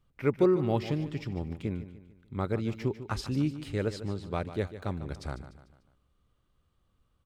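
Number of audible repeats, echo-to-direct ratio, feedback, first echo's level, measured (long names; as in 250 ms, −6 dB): 4, −12.0 dB, 45%, −13.0 dB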